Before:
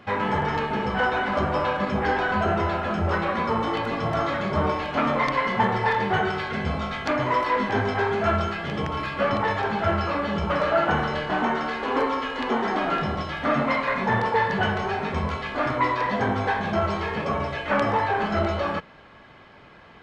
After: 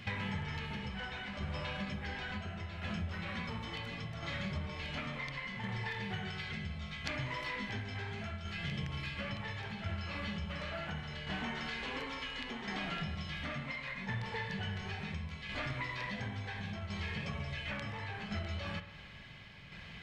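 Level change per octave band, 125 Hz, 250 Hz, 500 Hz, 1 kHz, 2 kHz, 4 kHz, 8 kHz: -9.5 dB, -15.0 dB, -22.5 dB, -22.0 dB, -13.0 dB, -7.5 dB, no reading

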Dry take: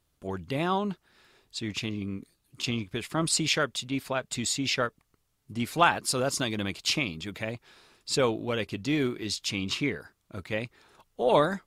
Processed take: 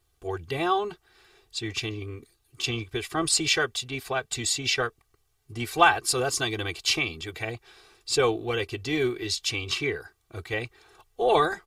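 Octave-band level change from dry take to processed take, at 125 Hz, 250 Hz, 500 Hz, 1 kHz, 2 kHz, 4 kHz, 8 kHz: -1.0 dB, -2.5 dB, +2.0 dB, +3.0 dB, +4.0 dB, +3.0 dB, +3.0 dB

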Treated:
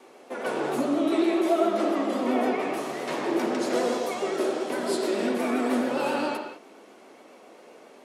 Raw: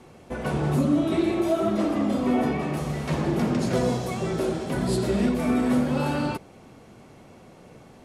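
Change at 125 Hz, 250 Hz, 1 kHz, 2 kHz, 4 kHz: -20.5 dB, -3.5 dB, +2.0 dB, +1.5 dB, +1.0 dB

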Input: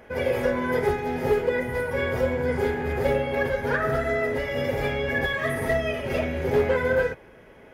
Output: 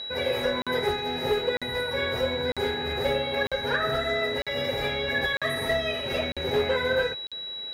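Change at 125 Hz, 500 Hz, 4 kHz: -6.5 dB, -3.0 dB, +12.0 dB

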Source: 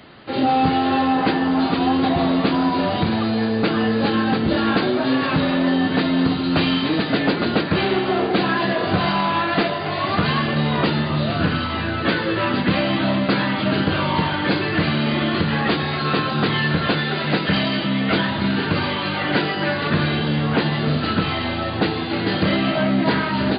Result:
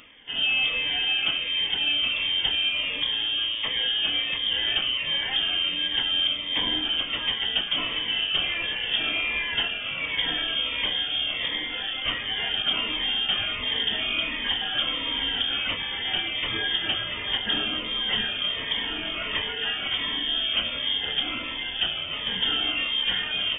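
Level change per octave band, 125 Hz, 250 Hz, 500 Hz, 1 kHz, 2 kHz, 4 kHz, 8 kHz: -23.5 dB, -23.0 dB, -18.5 dB, -16.5 dB, -4.0 dB, +5.5 dB, no reading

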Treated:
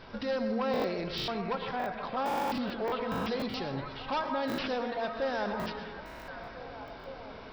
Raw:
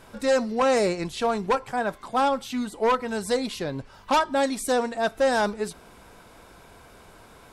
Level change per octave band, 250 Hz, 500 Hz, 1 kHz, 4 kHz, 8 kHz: -5.5 dB, -9.0 dB, -8.0 dB, -5.0 dB, -19.0 dB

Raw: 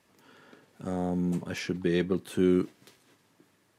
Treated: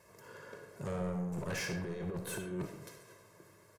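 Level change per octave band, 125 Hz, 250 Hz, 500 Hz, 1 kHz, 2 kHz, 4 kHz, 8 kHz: -7.0 dB, -12.0 dB, -10.0 dB, -4.5 dB, -3.0 dB, -5.5 dB, +2.0 dB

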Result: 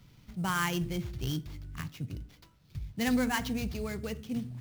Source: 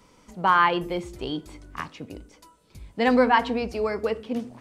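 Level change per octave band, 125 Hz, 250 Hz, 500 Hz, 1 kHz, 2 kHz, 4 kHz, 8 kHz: +4.5 dB, -4.5 dB, -14.5 dB, -15.0 dB, -9.0 dB, -4.5 dB, no reading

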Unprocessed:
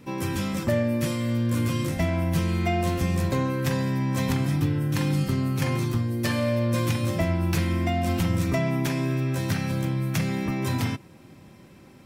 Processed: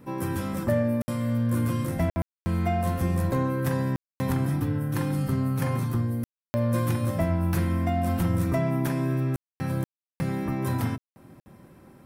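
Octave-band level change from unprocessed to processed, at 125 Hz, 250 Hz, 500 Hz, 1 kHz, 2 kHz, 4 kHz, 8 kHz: -1.5 dB, -1.5 dB, -1.5 dB, -0.5 dB, -5.5 dB, -10.0 dB, -5.5 dB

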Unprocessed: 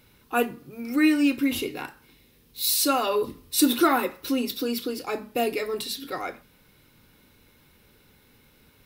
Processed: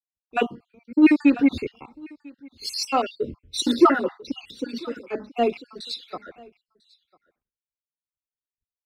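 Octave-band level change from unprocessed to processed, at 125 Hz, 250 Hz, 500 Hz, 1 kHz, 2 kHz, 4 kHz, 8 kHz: +2.5 dB, +3.0 dB, +1.5 dB, +1.5 dB, -0.5 dB, -1.5 dB, -8.0 dB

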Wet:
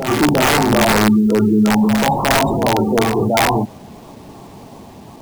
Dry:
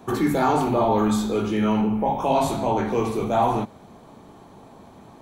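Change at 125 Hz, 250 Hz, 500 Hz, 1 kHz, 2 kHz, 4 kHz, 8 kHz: +8.5 dB, +8.5 dB, +5.5 dB, +5.0 dB, +16.0 dB, +15.0 dB, +14.5 dB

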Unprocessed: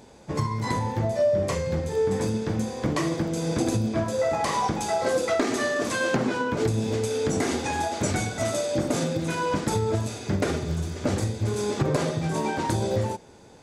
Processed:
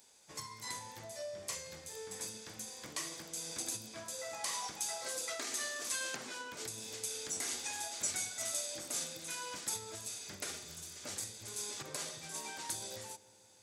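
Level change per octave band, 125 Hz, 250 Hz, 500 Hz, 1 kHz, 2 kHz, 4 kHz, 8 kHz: -30.0 dB, -27.5 dB, -23.0 dB, -18.5 dB, -13.0 dB, -6.0 dB, -1.5 dB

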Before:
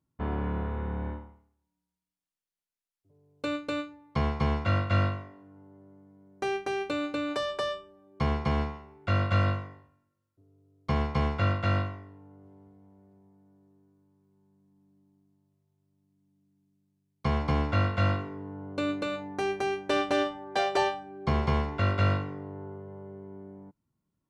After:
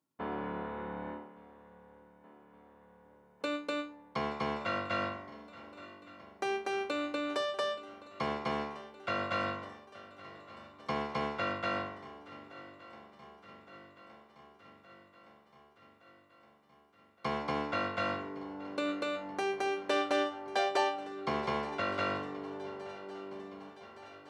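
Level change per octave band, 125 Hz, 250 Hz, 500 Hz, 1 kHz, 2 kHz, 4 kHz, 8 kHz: -20.0 dB, -6.0 dB, -3.0 dB, -2.5 dB, -2.0 dB, -2.5 dB, no reading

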